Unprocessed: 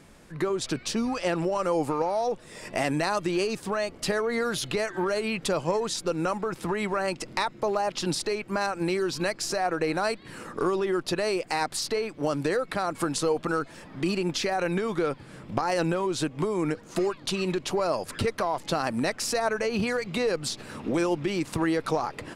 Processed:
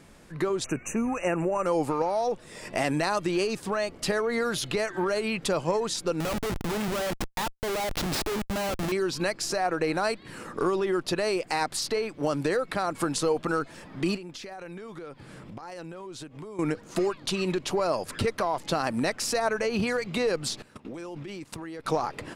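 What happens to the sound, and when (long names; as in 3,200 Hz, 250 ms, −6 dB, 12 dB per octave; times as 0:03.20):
0:00.64–0:01.66: linear-phase brick-wall band-stop 2,900–5,800 Hz
0:06.20–0:08.92: comparator with hysteresis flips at −31.5 dBFS
0:14.16–0:16.59: downward compressor 4 to 1, threshold −40 dBFS
0:20.62–0:21.86: output level in coarse steps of 19 dB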